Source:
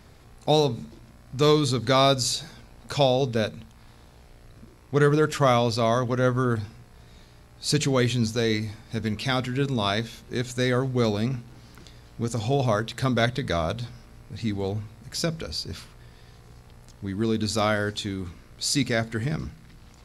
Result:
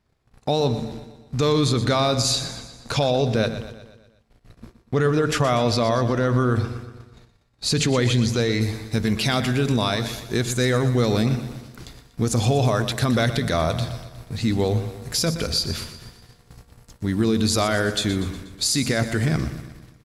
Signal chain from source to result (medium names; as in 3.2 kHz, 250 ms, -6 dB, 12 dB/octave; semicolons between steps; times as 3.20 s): gate -46 dBFS, range -27 dB; treble shelf 9 kHz -6 dB, from 8.61 s +7.5 dB; peak limiter -19.5 dBFS, peak gain reduction 10 dB; feedback delay 121 ms, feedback 53%, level -12 dB; trim +7.5 dB